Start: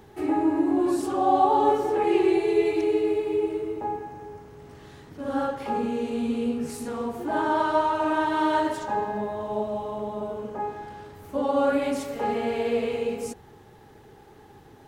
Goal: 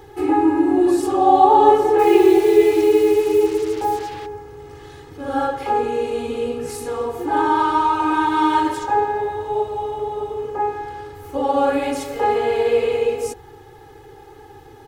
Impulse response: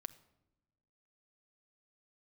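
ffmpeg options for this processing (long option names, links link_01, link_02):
-filter_complex "[0:a]aecho=1:1:2.4:0.96,asplit=3[link_01][link_02][link_03];[link_01]afade=type=out:start_time=1.98:duration=0.02[link_04];[link_02]acrusher=bits=5:mix=0:aa=0.5,afade=type=in:start_time=1.98:duration=0.02,afade=type=out:start_time=4.25:duration=0.02[link_05];[link_03]afade=type=in:start_time=4.25:duration=0.02[link_06];[link_04][link_05][link_06]amix=inputs=3:normalize=0,volume=3.5dB"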